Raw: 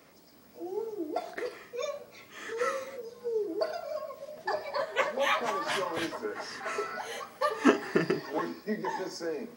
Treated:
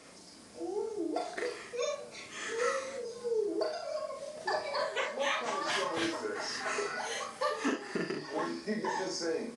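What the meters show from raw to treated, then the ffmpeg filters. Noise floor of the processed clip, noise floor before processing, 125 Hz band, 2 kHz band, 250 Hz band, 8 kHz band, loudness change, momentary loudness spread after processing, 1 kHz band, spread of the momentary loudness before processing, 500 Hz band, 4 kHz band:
-53 dBFS, -57 dBFS, -5.5 dB, -1.5 dB, -4.0 dB, +4.0 dB, -2.5 dB, 7 LU, -2.5 dB, 11 LU, -2.0 dB, +1.0 dB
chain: -filter_complex "[0:a]acrossover=split=7200[a][b];[b]acompressor=threshold=-58dB:ratio=4:attack=1:release=60[c];[a][c]amix=inputs=2:normalize=0,aemphasis=mode=production:type=50kf,asplit=2[d][e];[e]acompressor=threshold=-42dB:ratio=6,volume=-1dB[f];[d][f]amix=inputs=2:normalize=0,alimiter=limit=-18dB:level=0:latency=1:release=440,asplit=2[g][h];[h]aecho=0:1:39|66:0.596|0.398[i];[g][i]amix=inputs=2:normalize=0,aresample=22050,aresample=44100,volume=-4dB"

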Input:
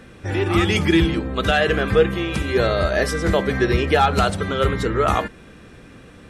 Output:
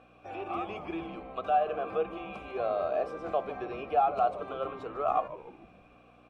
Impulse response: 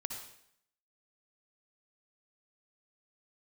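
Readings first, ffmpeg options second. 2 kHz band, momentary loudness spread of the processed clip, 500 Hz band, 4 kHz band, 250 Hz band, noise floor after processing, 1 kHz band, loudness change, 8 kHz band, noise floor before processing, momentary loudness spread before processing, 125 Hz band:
-22.0 dB, 13 LU, -11.5 dB, -25.5 dB, -20.5 dB, -59 dBFS, -6.0 dB, -12.5 dB, under -30 dB, -44 dBFS, 5 LU, -29.0 dB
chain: -filter_complex "[0:a]highshelf=f=8.9k:g=6.5,acrossover=split=1500[a][b];[b]acompressor=threshold=-35dB:ratio=6[c];[a][c]amix=inputs=2:normalize=0,aeval=exprs='val(0)+0.0251*(sin(2*PI*60*n/s)+sin(2*PI*2*60*n/s)/2+sin(2*PI*3*60*n/s)/3+sin(2*PI*4*60*n/s)/4+sin(2*PI*5*60*n/s)/5)':c=same,asplit=3[d][e][f];[d]bandpass=f=730:t=q:w=8,volume=0dB[g];[e]bandpass=f=1.09k:t=q:w=8,volume=-6dB[h];[f]bandpass=f=2.44k:t=q:w=8,volume=-9dB[i];[g][h][i]amix=inputs=3:normalize=0,asplit=6[j][k][l][m][n][o];[k]adelay=149,afreqshift=-140,volume=-15dB[p];[l]adelay=298,afreqshift=-280,volume=-21.2dB[q];[m]adelay=447,afreqshift=-420,volume=-27.4dB[r];[n]adelay=596,afreqshift=-560,volume=-33.6dB[s];[o]adelay=745,afreqshift=-700,volume=-39.8dB[t];[j][p][q][r][s][t]amix=inputs=6:normalize=0"

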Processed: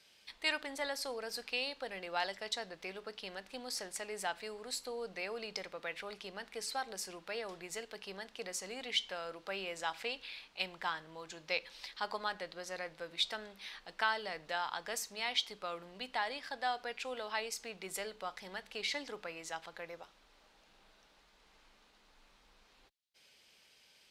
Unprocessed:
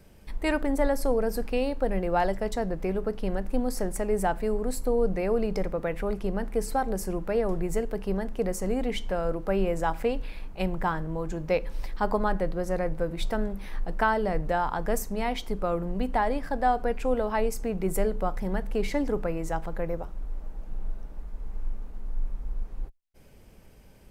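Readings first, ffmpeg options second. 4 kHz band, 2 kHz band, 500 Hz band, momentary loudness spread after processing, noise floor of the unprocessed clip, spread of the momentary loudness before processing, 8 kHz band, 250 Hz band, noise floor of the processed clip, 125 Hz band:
+5.5 dB, -3.0 dB, -16.0 dB, 10 LU, -51 dBFS, 13 LU, -3.0 dB, -22.0 dB, -67 dBFS, -26.5 dB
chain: -af "bandpass=f=3.9k:t=q:w=1.9:csg=0,volume=7.5dB"

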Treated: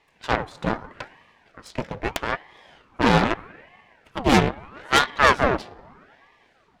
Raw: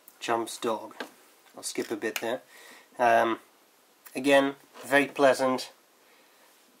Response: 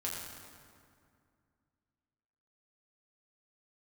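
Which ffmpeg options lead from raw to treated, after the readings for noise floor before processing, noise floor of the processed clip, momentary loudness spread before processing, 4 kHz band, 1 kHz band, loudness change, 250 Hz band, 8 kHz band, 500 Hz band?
-62 dBFS, -61 dBFS, 19 LU, +8.0 dB, +6.0 dB, +4.5 dB, +5.5 dB, +2.0 dB, -0.5 dB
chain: -filter_complex "[0:a]asplit=2[a][b];[1:a]atrim=start_sample=2205,lowpass=4.3k[c];[b][c]afir=irnorm=-1:irlink=0,volume=-15.5dB[d];[a][d]amix=inputs=2:normalize=0,adynamicsmooth=sensitivity=2:basefreq=3.3k,aeval=exprs='0.376*(cos(1*acos(clip(val(0)/0.376,-1,1)))-cos(1*PI/2))+0.0335*(cos(3*acos(clip(val(0)/0.376,-1,1)))-cos(3*PI/2))+0.106*(cos(6*acos(clip(val(0)/0.376,-1,1)))-cos(6*PI/2))':c=same,aeval=exprs='val(0)*sin(2*PI*810*n/s+810*0.8/0.79*sin(2*PI*0.79*n/s))':c=same,volume=4.5dB"

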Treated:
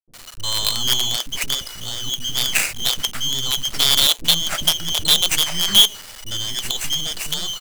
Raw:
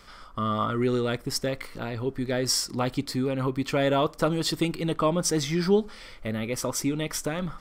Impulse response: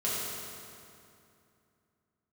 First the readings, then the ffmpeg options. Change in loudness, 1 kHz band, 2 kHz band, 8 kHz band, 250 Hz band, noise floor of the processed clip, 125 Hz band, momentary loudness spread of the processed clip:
+9.0 dB, -2.0 dB, +8.0 dB, +11.0 dB, -10.0 dB, -40 dBFS, -5.0 dB, 11 LU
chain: -filter_complex "[0:a]afftfilt=real='real(if(lt(b,272),68*(eq(floor(b/68),0)*2+eq(floor(b/68),1)*3+eq(floor(b/68),2)*0+eq(floor(b/68),3)*1)+mod(b,68),b),0)':imag='imag(if(lt(b,272),68*(eq(floor(b/68),0)*2+eq(floor(b/68),1)*3+eq(floor(b/68),2)*0+eq(floor(b/68),3)*1)+mod(b,68),b),0)':win_size=2048:overlap=0.75,bandreject=f=195.8:t=h:w=4,bandreject=f=391.6:t=h:w=4,bandreject=f=587.4:t=h:w=4,afftfilt=real='re*(1-between(b*sr/4096,190,560))':imag='im*(1-between(b*sr/4096,190,560))':win_size=4096:overlap=0.75,acrusher=bits=4:dc=4:mix=0:aa=0.000001,acrossover=split=360[a][b];[b]adelay=60[c];[a][c]amix=inputs=2:normalize=0,volume=8dB"

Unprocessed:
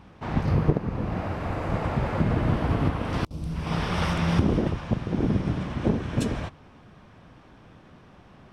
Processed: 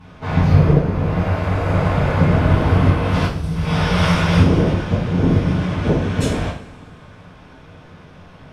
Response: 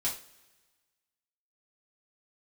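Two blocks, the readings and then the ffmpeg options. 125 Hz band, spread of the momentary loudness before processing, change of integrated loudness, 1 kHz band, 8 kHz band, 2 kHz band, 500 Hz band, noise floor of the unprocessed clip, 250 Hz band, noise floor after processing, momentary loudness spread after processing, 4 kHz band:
+10.5 dB, 7 LU, +9.5 dB, +8.0 dB, +9.0 dB, +10.5 dB, +9.0 dB, -52 dBFS, +8.0 dB, -43 dBFS, 7 LU, +10.0 dB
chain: -filter_complex "[1:a]atrim=start_sample=2205,asetrate=28665,aresample=44100[a];[0:a][a]afir=irnorm=-1:irlink=0,volume=1dB"

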